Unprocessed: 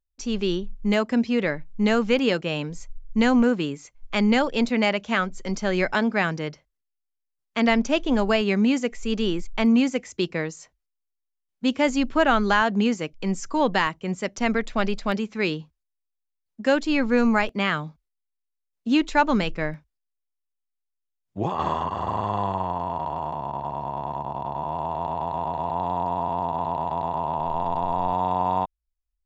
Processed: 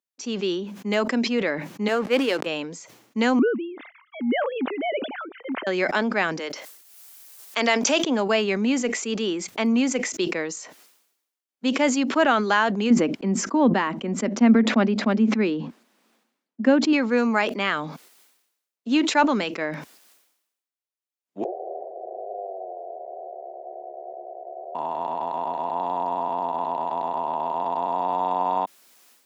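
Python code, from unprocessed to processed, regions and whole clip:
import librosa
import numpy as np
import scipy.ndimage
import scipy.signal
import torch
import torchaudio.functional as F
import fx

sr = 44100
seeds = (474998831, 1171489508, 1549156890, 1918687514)

y = fx.chain(x, sr, fx.peak_eq(hz=200.0, db=-9.0, octaves=0.6),
    fx.backlash(play_db=-31.0),
    fx.band_widen(depth_pct=100), at=(1.88, 2.46))
y = fx.chain(y, sr, fx.sine_speech(),
    fx.lowpass(hz=1600.0, slope=6),
    fx.tremolo(hz=1.9, depth=0.62), at=(3.39, 5.67))
y = fx.chain(y, sr, fx.highpass(hz=380.0, slope=12),
    fx.high_shelf(hz=5400.0, db=11.0),
    fx.pre_swell(db_per_s=42.0), at=(6.39, 8.04))
y = fx.chain(y, sr, fx.lowpass(hz=1500.0, slope=6),
    fx.peak_eq(hz=230.0, db=14.0, octaves=0.58), at=(12.9, 16.93))
y = fx.chain(y, sr, fx.sample_sort(block=16),
    fx.cheby1_bandpass(low_hz=360.0, high_hz=750.0, order=5),
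    fx.echo_single(ms=155, db=-12.5), at=(21.44, 24.75))
y = scipy.signal.sosfilt(scipy.signal.butter(4, 230.0, 'highpass', fs=sr, output='sos'), y)
y = fx.sustainer(y, sr, db_per_s=66.0)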